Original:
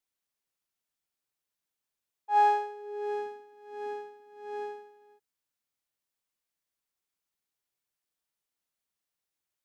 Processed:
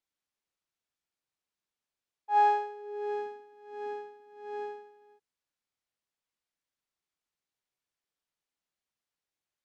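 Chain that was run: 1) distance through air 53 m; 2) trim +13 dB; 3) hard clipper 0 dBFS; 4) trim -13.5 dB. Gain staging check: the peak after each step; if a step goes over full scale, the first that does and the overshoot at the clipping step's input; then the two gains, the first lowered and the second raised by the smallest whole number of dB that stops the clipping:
-15.5 dBFS, -2.5 dBFS, -2.5 dBFS, -16.0 dBFS; nothing clips

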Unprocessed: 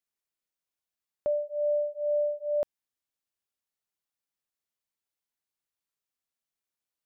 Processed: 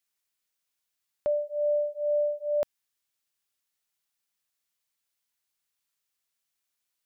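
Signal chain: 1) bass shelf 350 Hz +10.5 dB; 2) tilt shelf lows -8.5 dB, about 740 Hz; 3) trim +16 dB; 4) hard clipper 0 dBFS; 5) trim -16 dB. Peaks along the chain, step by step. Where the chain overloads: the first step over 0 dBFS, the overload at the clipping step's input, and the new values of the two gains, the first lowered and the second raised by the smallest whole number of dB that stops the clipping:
-17.5 dBFS, -20.5 dBFS, -4.5 dBFS, -4.5 dBFS, -20.5 dBFS; nothing clips

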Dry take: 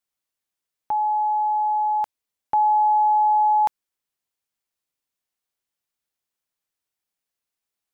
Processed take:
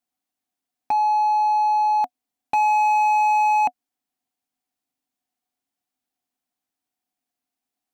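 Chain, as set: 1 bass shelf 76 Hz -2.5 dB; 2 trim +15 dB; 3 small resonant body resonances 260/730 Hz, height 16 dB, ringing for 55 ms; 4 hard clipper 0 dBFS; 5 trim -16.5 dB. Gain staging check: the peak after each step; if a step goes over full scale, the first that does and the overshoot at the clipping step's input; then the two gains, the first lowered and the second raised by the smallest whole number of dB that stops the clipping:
-14.5 dBFS, +0.5 dBFS, +8.0 dBFS, 0.0 dBFS, -16.5 dBFS; step 2, 8.0 dB; step 2 +7 dB, step 5 -8.5 dB

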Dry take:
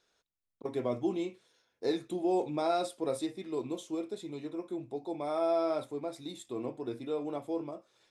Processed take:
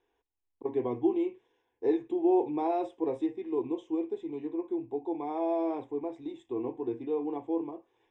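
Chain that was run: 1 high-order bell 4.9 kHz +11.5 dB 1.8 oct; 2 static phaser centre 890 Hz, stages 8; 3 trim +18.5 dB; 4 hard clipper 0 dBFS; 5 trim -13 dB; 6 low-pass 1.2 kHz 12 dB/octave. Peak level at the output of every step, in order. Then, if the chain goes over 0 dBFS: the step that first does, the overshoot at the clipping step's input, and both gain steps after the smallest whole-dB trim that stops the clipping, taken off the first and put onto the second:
-17.0 dBFS, -21.0 dBFS, -2.5 dBFS, -2.5 dBFS, -15.5 dBFS, -16.0 dBFS; nothing clips

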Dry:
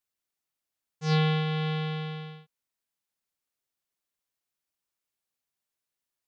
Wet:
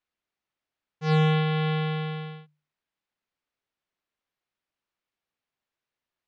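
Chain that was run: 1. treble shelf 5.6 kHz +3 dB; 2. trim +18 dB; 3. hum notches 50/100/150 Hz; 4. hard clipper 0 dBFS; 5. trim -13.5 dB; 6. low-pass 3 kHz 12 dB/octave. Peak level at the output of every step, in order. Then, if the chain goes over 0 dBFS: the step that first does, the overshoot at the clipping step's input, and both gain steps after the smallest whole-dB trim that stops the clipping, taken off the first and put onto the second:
-15.5 dBFS, +2.5 dBFS, +4.5 dBFS, 0.0 dBFS, -13.5 dBFS, -13.5 dBFS; step 2, 4.5 dB; step 2 +13 dB, step 5 -8.5 dB

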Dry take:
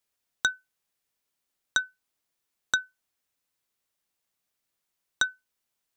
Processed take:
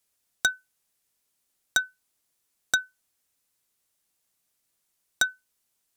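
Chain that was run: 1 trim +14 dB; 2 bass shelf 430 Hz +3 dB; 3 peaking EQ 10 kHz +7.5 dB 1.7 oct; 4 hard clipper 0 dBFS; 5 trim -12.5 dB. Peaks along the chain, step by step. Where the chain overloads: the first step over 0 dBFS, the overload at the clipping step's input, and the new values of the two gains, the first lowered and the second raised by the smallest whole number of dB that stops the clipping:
+5.5 dBFS, +5.5 dBFS, +8.5 dBFS, 0.0 dBFS, -12.5 dBFS; step 1, 8.5 dB; step 1 +5 dB, step 5 -3.5 dB

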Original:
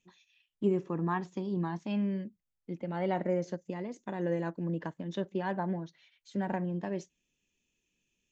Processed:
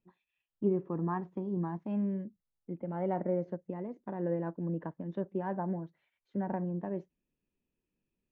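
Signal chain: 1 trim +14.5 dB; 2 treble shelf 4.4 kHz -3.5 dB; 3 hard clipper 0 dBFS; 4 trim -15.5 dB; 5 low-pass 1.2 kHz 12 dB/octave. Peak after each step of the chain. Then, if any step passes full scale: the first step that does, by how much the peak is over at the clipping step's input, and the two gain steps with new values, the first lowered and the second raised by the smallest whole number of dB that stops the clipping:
-3.0 dBFS, -3.0 dBFS, -3.0 dBFS, -18.5 dBFS, -18.5 dBFS; nothing clips

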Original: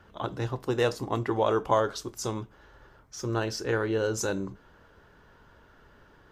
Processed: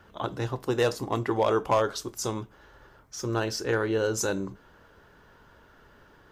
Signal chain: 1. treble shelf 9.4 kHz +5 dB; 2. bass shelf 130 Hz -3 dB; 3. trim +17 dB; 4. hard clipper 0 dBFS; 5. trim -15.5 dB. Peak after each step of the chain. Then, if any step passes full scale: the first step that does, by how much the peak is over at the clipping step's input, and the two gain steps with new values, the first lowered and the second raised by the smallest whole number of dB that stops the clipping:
-10.5 dBFS, -10.5 dBFS, +6.5 dBFS, 0.0 dBFS, -15.5 dBFS; step 3, 6.5 dB; step 3 +10 dB, step 5 -8.5 dB

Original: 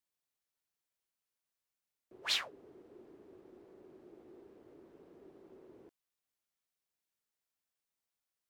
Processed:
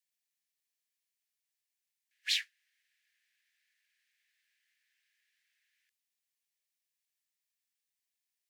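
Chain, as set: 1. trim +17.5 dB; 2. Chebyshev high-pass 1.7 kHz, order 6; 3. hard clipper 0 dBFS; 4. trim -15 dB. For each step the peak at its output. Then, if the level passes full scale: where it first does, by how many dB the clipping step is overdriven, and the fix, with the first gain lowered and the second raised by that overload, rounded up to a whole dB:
-1.0 dBFS, -2.5 dBFS, -2.5 dBFS, -17.5 dBFS; nothing clips

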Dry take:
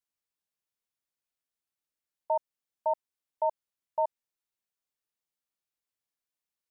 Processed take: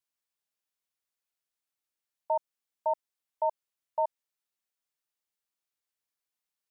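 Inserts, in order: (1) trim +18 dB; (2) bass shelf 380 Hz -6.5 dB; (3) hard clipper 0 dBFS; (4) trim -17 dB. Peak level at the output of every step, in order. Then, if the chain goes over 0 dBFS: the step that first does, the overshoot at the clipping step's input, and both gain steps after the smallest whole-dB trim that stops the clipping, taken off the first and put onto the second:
-1.0 dBFS, -2.5 dBFS, -2.5 dBFS, -19.5 dBFS; nothing clips

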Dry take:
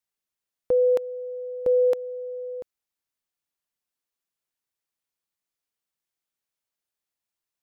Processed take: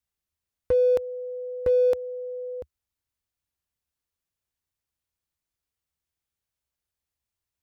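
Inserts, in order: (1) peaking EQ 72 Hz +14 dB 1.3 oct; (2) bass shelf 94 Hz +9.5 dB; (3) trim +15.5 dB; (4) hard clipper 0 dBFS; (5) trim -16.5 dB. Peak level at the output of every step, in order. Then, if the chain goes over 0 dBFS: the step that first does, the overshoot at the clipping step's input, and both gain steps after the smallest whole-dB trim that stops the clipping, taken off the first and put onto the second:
-14.0 dBFS, -12.0 dBFS, +3.5 dBFS, 0.0 dBFS, -16.5 dBFS; step 3, 3.5 dB; step 3 +11.5 dB, step 5 -12.5 dB

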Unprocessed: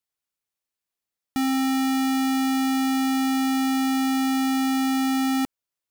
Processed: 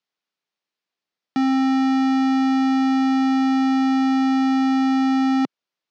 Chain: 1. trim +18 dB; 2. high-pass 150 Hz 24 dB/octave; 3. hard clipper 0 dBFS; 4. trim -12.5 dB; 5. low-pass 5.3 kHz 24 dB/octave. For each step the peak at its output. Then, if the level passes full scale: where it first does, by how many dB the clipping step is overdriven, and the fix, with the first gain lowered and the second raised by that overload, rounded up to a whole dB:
-4.5 dBFS, +4.5 dBFS, 0.0 dBFS, -12.5 dBFS, -11.5 dBFS; step 2, 4.5 dB; step 1 +13 dB, step 4 -7.5 dB

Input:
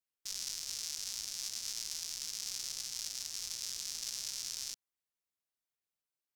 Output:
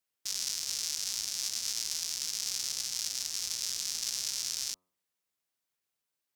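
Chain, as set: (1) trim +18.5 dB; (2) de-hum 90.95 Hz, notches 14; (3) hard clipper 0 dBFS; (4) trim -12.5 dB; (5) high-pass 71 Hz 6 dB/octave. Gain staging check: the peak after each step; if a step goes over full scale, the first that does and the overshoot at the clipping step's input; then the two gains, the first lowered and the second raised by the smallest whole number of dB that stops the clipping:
-2.5 dBFS, -2.5 dBFS, -2.5 dBFS, -15.0 dBFS, -15.0 dBFS; nothing clips

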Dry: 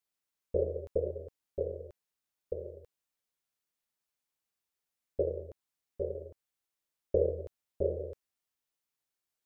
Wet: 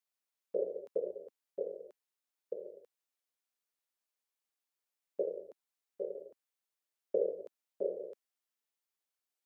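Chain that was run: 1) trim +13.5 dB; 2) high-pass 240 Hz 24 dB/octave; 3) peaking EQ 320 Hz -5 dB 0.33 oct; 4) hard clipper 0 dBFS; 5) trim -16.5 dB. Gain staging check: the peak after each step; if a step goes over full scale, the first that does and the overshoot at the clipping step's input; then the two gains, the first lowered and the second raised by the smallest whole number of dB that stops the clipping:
-1.5 dBFS, -2.0 dBFS, -3.0 dBFS, -3.0 dBFS, -19.5 dBFS; nothing clips

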